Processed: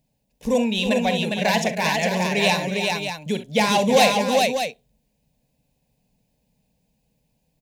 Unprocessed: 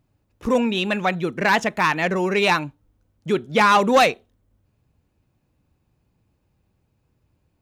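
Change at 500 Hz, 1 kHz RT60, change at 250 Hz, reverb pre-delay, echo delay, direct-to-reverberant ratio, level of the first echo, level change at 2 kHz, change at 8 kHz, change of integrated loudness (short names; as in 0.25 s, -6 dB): +1.0 dB, none, +1.0 dB, none, 42 ms, none, -12.0 dB, -2.0 dB, +7.0 dB, -1.0 dB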